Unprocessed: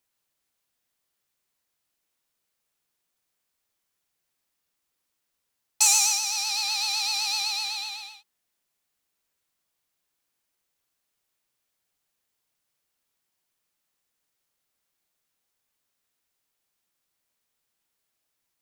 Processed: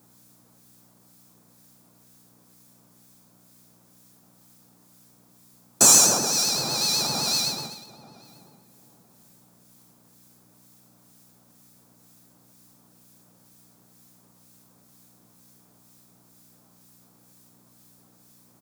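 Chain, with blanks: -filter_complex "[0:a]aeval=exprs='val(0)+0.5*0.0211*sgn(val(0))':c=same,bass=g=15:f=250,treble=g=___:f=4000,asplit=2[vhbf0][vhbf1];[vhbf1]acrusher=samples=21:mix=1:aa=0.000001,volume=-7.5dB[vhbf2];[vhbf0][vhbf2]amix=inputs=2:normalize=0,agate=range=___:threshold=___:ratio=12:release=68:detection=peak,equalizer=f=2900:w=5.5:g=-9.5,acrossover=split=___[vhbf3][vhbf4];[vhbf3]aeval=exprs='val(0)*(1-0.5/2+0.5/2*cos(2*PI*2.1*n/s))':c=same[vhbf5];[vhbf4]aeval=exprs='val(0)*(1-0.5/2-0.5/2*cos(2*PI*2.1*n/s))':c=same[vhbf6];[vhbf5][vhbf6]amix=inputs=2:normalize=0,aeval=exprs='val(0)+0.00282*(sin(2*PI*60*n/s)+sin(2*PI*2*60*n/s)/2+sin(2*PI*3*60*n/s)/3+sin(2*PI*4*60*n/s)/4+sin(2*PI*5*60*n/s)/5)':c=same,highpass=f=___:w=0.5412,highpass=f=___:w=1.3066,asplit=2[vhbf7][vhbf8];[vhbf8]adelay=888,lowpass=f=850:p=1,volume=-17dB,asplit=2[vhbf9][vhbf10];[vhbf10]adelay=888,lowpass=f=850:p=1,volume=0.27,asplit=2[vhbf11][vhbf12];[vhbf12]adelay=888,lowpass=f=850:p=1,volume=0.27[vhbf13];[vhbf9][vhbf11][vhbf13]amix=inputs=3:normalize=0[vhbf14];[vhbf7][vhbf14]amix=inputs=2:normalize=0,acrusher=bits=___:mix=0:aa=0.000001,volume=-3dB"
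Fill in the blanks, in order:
10, -23dB, -22dB, 1600, 130, 130, 10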